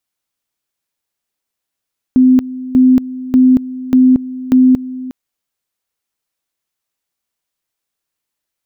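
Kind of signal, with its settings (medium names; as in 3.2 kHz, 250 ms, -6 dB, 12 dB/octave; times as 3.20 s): two-level tone 256 Hz -4.5 dBFS, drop 17 dB, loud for 0.23 s, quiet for 0.36 s, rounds 5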